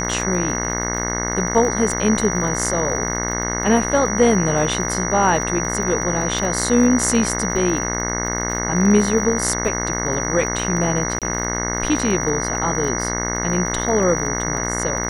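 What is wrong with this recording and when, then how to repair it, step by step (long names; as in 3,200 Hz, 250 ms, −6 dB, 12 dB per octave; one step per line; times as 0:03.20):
mains buzz 60 Hz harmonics 36 −25 dBFS
surface crackle 43 per second −27 dBFS
whistle 5,800 Hz −25 dBFS
0:11.19–0:11.22: drop-out 27 ms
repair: click removal
notch filter 5,800 Hz, Q 30
hum removal 60 Hz, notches 36
repair the gap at 0:11.19, 27 ms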